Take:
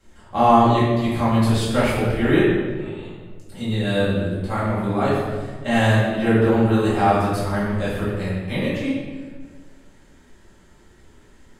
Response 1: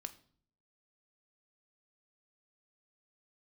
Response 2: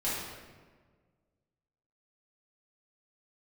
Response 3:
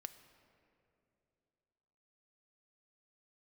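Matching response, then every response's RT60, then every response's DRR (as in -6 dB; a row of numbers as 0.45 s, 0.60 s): 2; no single decay rate, 1.5 s, 2.8 s; 7.5 dB, -10.5 dB, 9.5 dB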